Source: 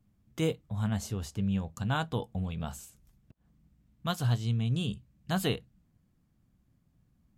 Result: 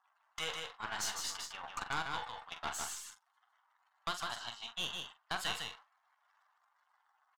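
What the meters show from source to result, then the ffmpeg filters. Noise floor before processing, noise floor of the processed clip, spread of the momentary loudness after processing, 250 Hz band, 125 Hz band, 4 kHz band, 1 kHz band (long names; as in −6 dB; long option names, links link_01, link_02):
−71 dBFS, −77 dBFS, 8 LU, −22.5 dB, −26.5 dB, +1.5 dB, −0.5 dB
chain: -filter_complex "[0:a]aeval=exprs='val(0)+0.5*0.02*sgn(val(0))':channel_layout=same,highpass=frequency=880:width=0.5412,highpass=frequency=880:width=1.3066,afftdn=noise_reduction=19:noise_floor=-49,agate=range=-21dB:threshold=-48dB:ratio=16:detection=peak,equalizer=frequency=2400:width_type=o:width=0.22:gain=-9,alimiter=level_in=2.5dB:limit=-24dB:level=0:latency=1:release=489,volume=-2.5dB,adynamicsmooth=sensitivity=3:basefreq=6000,aeval=exprs='(tanh(50.1*val(0)+0.65)-tanh(0.65))/50.1':channel_layout=same,asplit=2[link_01][link_02];[link_02]adelay=43,volume=-10dB[link_03];[link_01][link_03]amix=inputs=2:normalize=0,aecho=1:1:154:0.596,volume=7dB"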